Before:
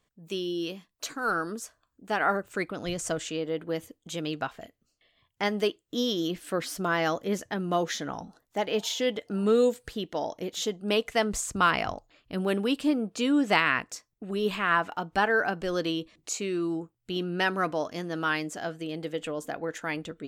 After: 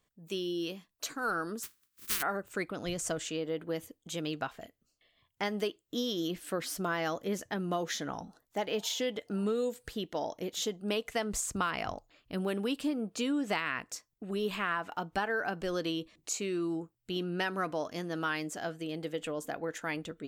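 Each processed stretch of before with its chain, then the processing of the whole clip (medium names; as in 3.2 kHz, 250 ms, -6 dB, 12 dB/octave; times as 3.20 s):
1.62–2.21 s: spectral contrast reduction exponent 0.13 + high-order bell 660 Hz -13.5 dB 1.1 oct
whole clip: treble shelf 11 kHz +6.5 dB; compression, threshold -25 dBFS; trim -3 dB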